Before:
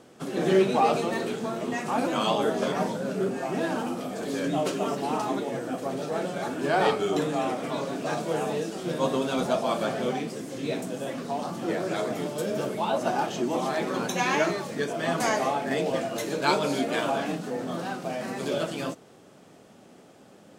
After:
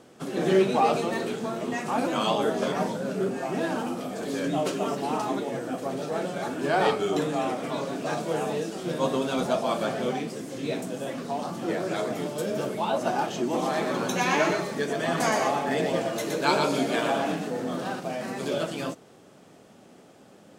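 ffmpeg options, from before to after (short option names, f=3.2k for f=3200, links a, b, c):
-filter_complex "[0:a]asettb=1/sr,asplit=3[a][b][c];[a]atrim=end=13.414[d];[b]atrim=start=13.41:end=18,asetpts=PTS-STARTPTS,afade=t=in:d=0.004:c=qsin,afade=t=out:st=4.586:d=0.004:c=qsin,aecho=1:1:119:0.562,atrim=end_sample=202419[e];[c]atrim=start=17.996[f];[d][e]acrossfade=d=0.004:c1=hsin:c2=qsin[g];[g][f]acrossfade=d=0.004:c1=qsin:c2=hsin"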